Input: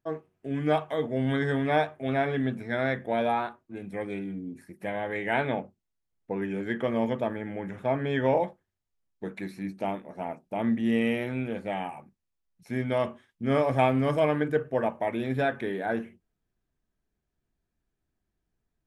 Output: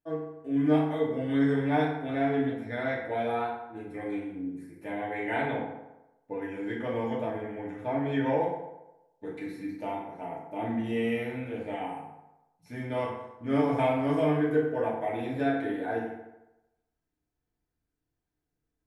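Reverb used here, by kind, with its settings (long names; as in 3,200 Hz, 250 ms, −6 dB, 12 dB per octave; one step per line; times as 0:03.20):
feedback delay network reverb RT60 0.97 s, low-frequency decay 0.85×, high-frequency decay 0.6×, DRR −6 dB
level −9.5 dB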